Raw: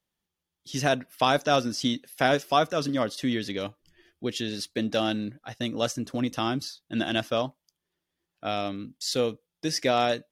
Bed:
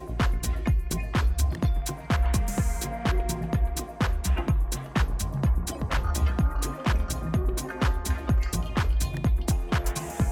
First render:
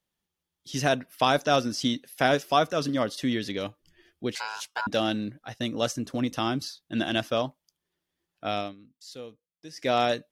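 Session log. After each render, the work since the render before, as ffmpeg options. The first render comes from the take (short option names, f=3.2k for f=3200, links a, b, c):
-filter_complex "[0:a]asettb=1/sr,asplit=3[a][b][c];[a]atrim=end=4.354[d];[b]atrim=start=4.35:end=4.87,asetpts=PTS-STARTPTS,afade=t=in:d=0.004:c=qsin,afade=t=out:st=0.516:d=0.004:c=qsin,aeval=exprs='val(0)*sin(2*PI*1200*n/s)':c=same[e];[c]atrim=start=4.866[f];[d][e]acrossfade=d=0.004:c1=hsin:c2=qsin[g];[g][f]acrossfade=d=0.004:c1=qsin:c2=hsin,asplit=3[h][i][j];[h]atrim=end=8.75,asetpts=PTS-STARTPTS,afade=t=out:st=8.58:d=0.17:silence=0.16788[k];[i]atrim=start=8.75:end=9.76,asetpts=PTS-STARTPTS,volume=-15.5dB[l];[j]atrim=start=9.76,asetpts=PTS-STARTPTS,afade=t=in:d=0.17:silence=0.16788[m];[k][l][m]concat=n=3:v=0:a=1"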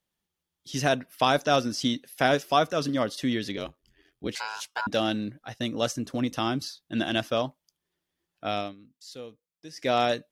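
-filter_complex "[0:a]asplit=3[a][b][c];[a]afade=t=out:st=3.56:d=0.02[d];[b]aeval=exprs='val(0)*sin(2*PI*44*n/s)':c=same,afade=t=in:st=3.56:d=0.02,afade=t=out:st=4.27:d=0.02[e];[c]afade=t=in:st=4.27:d=0.02[f];[d][e][f]amix=inputs=3:normalize=0"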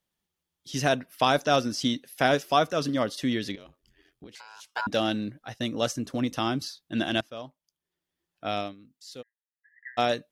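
-filter_complex "[0:a]asettb=1/sr,asplit=3[a][b][c];[a]atrim=end=3.554[d];[b]atrim=start=3.55:end=4.7,asetpts=PTS-STARTPTS,afade=t=in:d=0.004:c=qsin,afade=t=out:st=1.146:d=0.004:c=qsin,acompressor=threshold=-42dB:ratio=12:attack=3.2:release=140:knee=1:detection=peak[e];[c]atrim=start=4.696[f];[d][e]acrossfade=d=0.004:c1=hsin:c2=qsin[g];[g][f]acrossfade=d=0.004:c1=qsin:c2=hsin,asplit=3[h][i][j];[h]afade=t=out:st=9.21:d=0.02[k];[i]asuperpass=centerf=1800:order=12:qfactor=4.6,afade=t=in:st=9.21:d=0.02,afade=t=out:st=9.97:d=0.02[l];[j]afade=t=in:st=9.97:d=0.02[m];[k][l][m]amix=inputs=3:normalize=0,asplit=2[n][o];[n]atrim=end=7.21,asetpts=PTS-STARTPTS,afade=t=out:st=7.206:d=0.004:c=hsin:silence=0.133352[p];[o]atrim=start=7.21,asetpts=PTS-STARTPTS,afade=t=in:d=1.41:silence=0.133352[q];[p][q]concat=n=2:v=0:a=1"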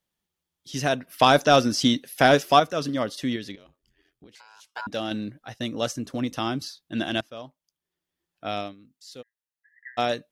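-filter_complex "[0:a]asettb=1/sr,asplit=3[a][b][c];[a]atrim=end=1.074[d];[b]atrim=start=1.07:end=2.6,asetpts=PTS-STARTPTS,afade=t=in:d=0.004:c=qsin,afade=t=out:st=1.526:d=0.004:c=qsin,acontrast=54[e];[c]atrim=start=2.596[f];[d][e]acrossfade=d=0.004:c1=hsin:c2=qsin[g];[g][f]acrossfade=d=0.004:c1=qsin:c2=hsin,asplit=3[h][i][j];[h]atrim=end=3.362[k];[i]atrim=start=3.358:end=5.112,asetpts=PTS-STARTPTS,volume=-4dB[l];[j]atrim=start=5.108[m];[k][l]acrossfade=d=0.004:c1=hsin:c2=hsin[n];[n][m]acrossfade=d=0.004:c1=hsin:c2=hsin"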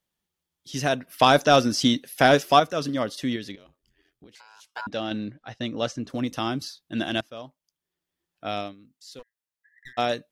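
-filter_complex "[0:a]asplit=3[a][b][c];[a]afade=t=out:st=4.88:d=0.02[d];[b]lowpass=5k,afade=t=in:st=4.88:d=0.02,afade=t=out:st=6.08:d=0.02[e];[c]afade=t=in:st=6.08:d=0.02[f];[d][e][f]amix=inputs=3:normalize=0,asettb=1/sr,asplit=3[g][h][i];[g]atrim=end=9.194[j];[h]atrim=start=9.19:end=9.93,asetpts=PTS-STARTPTS,afade=t=in:d=0.004:c=qsin,afade=t=out:st=0.736:d=0.004:c=qsin,aeval=exprs='clip(val(0),-1,0.00376)':c=same[k];[i]atrim=start=9.926[l];[j][k]acrossfade=d=0.004:c1=hsin:c2=qsin[m];[m][l]acrossfade=d=0.004:c1=qsin:c2=hsin"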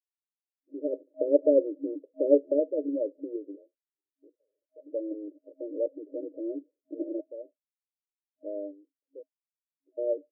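-af "agate=range=-33dB:threshold=-44dB:ratio=3:detection=peak,afftfilt=real='re*between(b*sr/4096,270,630)':imag='im*between(b*sr/4096,270,630)':win_size=4096:overlap=0.75"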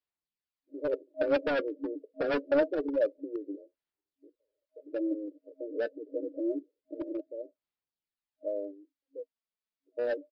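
-af "aresample=11025,asoftclip=type=hard:threshold=-25.5dB,aresample=44100,aphaser=in_gain=1:out_gain=1:delay=4.6:decay=0.51:speed=0.26:type=sinusoidal"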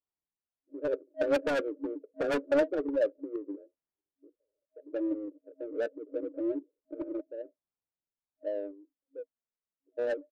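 -af "adynamicsmooth=sensitivity=7:basefreq=1.3k"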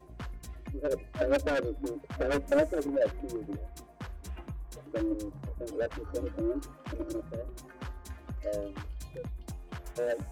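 -filter_complex "[1:a]volume=-16.5dB[a];[0:a][a]amix=inputs=2:normalize=0"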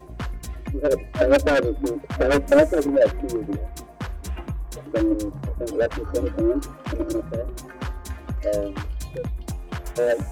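-af "volume=10.5dB"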